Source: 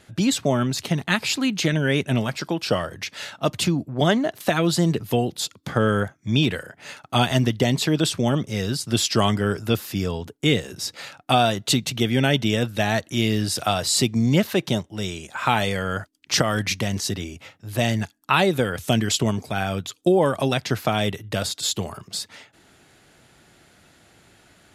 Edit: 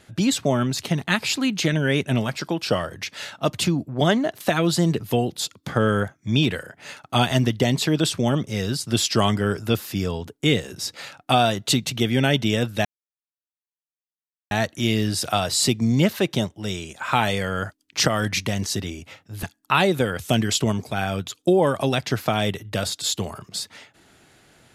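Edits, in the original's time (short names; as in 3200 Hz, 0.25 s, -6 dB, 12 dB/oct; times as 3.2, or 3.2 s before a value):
12.85 insert silence 1.66 s
17.77–18.02 cut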